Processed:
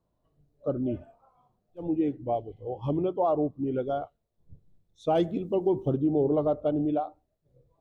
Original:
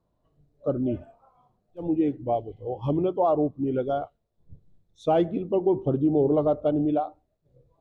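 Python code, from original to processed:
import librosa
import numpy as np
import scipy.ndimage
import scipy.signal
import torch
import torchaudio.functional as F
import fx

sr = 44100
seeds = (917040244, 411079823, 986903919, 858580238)

y = fx.bass_treble(x, sr, bass_db=2, treble_db=15, at=(5.15, 5.96))
y = y * librosa.db_to_amplitude(-3.0)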